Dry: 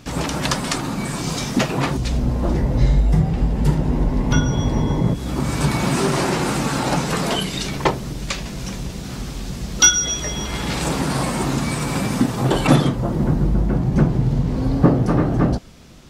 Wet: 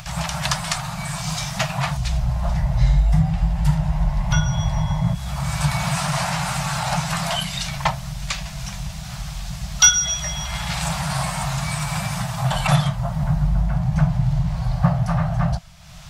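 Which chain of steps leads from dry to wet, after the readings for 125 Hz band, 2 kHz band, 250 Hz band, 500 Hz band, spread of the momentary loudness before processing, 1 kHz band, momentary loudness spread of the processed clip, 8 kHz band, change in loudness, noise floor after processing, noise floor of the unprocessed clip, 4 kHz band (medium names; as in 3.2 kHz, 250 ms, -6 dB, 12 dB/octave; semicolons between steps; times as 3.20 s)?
-0.5 dB, -0.5 dB, -7.0 dB, -9.0 dB, 10 LU, -0.5 dB, 9 LU, 0.0 dB, -2.0 dB, -32 dBFS, -30 dBFS, 0.0 dB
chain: upward compressor, threshold -29 dBFS; elliptic band-stop 170–650 Hz, stop band 40 dB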